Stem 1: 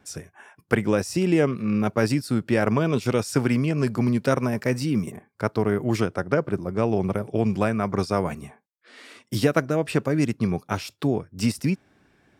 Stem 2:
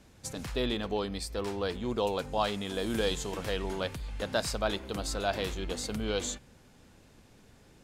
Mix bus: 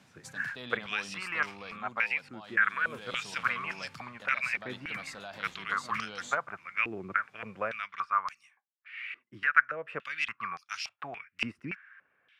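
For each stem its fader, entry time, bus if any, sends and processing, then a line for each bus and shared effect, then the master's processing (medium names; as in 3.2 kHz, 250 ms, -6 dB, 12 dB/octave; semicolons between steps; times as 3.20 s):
-1.5 dB, 0.00 s, no send, gate with hold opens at -51 dBFS; high-order bell 1.8 kHz +15 dB; step-sequenced band-pass 3.5 Hz 350–5100 Hz
+2.0 dB, 0.00 s, no send, high-pass 130 Hz 24 dB/octave; treble shelf 4.6 kHz -11 dB; peak limiter -23.5 dBFS, peak gain reduction 8 dB; auto duck -9 dB, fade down 0.35 s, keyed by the first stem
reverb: none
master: peaking EQ 370 Hz -14.5 dB 1.6 oct; gain riding within 4 dB 0.5 s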